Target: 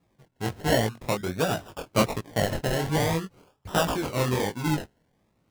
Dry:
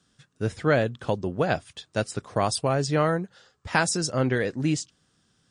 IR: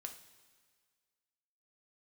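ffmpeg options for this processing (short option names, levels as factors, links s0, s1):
-filter_complex "[0:a]acrusher=samples=29:mix=1:aa=0.000001:lfo=1:lforange=17.4:lforate=0.47,asplit=3[s0][s1][s2];[s0]afade=t=out:st=1.57:d=0.02[s3];[s1]acontrast=82,afade=t=in:st=1.57:d=0.02,afade=t=out:st=2.16:d=0.02[s4];[s2]afade=t=in:st=2.16:d=0.02[s5];[s3][s4][s5]amix=inputs=3:normalize=0,flanger=delay=17:depth=8:speed=1.3,volume=1.19"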